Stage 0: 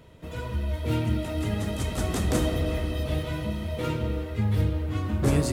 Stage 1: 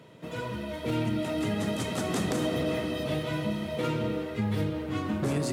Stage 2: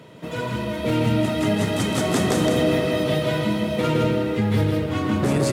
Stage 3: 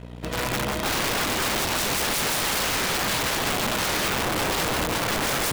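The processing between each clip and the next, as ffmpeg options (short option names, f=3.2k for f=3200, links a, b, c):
-af "highpass=f=130:w=0.5412,highpass=f=130:w=1.3066,highshelf=f=11k:g=-7.5,alimiter=limit=-21.5dB:level=0:latency=1:release=81,volume=2dB"
-af "aecho=1:1:162:0.668,volume=7dB"
-af "aeval=exprs='val(0)+0.0224*(sin(2*PI*60*n/s)+sin(2*PI*2*60*n/s)/2+sin(2*PI*3*60*n/s)/3+sin(2*PI*4*60*n/s)/4+sin(2*PI*5*60*n/s)/5)':c=same,aeval=exprs='(mod(10*val(0)+1,2)-1)/10':c=same,aeval=exprs='0.1*(cos(1*acos(clip(val(0)/0.1,-1,1)))-cos(1*PI/2))+0.0141*(cos(7*acos(clip(val(0)/0.1,-1,1)))-cos(7*PI/2))':c=same"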